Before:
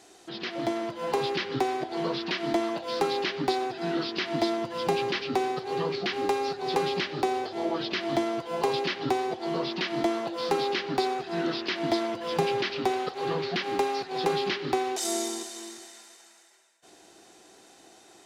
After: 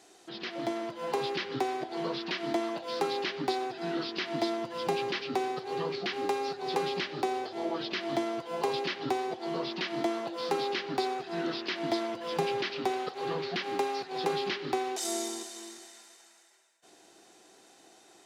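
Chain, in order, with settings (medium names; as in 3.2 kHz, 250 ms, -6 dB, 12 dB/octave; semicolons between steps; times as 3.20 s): high-pass 130 Hz 6 dB/octave; trim -3.5 dB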